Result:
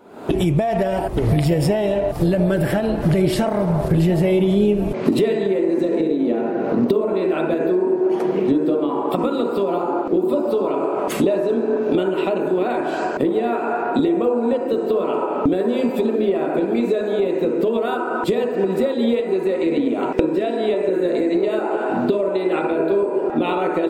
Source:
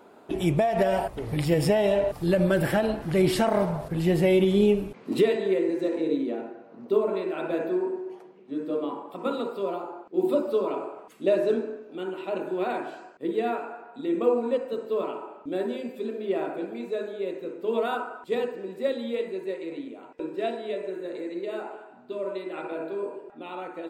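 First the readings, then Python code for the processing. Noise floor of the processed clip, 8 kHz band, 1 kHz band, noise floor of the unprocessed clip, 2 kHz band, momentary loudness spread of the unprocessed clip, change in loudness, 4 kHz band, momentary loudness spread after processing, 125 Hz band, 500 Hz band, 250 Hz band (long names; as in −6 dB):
−24 dBFS, can't be measured, +8.5 dB, −50 dBFS, +6.0 dB, 13 LU, +8.0 dB, +5.0 dB, 3 LU, +9.0 dB, +7.5 dB, +9.5 dB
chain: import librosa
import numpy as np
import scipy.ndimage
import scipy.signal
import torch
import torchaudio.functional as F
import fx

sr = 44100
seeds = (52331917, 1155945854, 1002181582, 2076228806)

y = fx.recorder_agc(x, sr, target_db=-15.0, rise_db_per_s=70.0, max_gain_db=30)
y = fx.low_shelf(y, sr, hz=320.0, db=6.5)
y = fx.echo_wet_bandpass(y, sr, ms=696, feedback_pct=67, hz=520.0, wet_db=-10.5)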